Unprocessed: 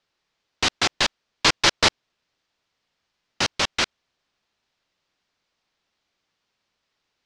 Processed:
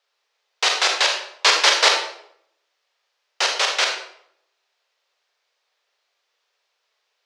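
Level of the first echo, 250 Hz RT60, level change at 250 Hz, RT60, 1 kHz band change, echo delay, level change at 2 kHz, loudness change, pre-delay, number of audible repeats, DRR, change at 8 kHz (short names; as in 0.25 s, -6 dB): none, 0.80 s, -11.5 dB, 0.70 s, +4.0 dB, none, +4.0 dB, +4.0 dB, 32 ms, none, 1.5 dB, +4.0 dB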